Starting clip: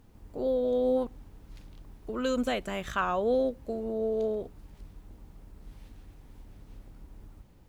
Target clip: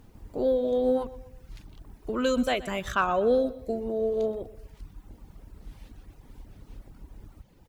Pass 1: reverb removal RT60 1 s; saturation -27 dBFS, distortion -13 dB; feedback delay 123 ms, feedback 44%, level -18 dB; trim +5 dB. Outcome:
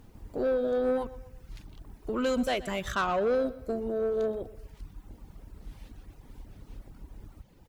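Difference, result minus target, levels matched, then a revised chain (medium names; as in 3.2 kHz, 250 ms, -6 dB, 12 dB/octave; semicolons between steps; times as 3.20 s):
saturation: distortion +18 dB
reverb removal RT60 1 s; saturation -15 dBFS, distortion -31 dB; feedback delay 123 ms, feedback 44%, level -18 dB; trim +5 dB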